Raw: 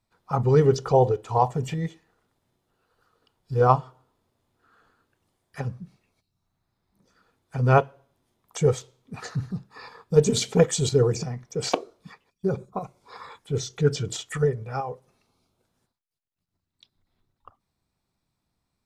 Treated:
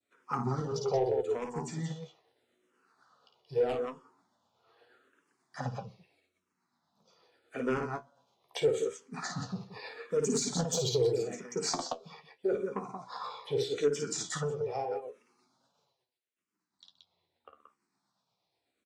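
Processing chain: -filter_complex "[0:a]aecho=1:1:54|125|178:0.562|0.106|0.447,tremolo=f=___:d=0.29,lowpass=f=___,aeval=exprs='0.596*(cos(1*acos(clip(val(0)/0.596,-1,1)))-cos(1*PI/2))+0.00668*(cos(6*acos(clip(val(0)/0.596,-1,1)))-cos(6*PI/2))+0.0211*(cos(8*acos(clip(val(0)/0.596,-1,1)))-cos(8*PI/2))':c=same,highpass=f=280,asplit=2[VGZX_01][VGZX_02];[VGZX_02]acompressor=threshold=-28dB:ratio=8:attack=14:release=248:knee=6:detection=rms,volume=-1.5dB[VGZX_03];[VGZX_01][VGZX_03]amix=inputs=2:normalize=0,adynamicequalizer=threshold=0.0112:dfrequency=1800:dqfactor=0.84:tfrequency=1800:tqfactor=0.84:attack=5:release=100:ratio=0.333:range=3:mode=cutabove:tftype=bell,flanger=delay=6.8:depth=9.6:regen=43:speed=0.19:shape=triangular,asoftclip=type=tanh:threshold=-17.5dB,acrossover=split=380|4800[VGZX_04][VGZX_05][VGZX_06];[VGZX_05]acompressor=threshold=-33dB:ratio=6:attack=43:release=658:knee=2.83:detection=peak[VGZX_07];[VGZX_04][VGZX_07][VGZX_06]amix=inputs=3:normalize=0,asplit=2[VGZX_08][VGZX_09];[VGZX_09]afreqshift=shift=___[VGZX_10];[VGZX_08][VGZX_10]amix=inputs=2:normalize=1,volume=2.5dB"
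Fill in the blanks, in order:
8.3, 7500, -0.8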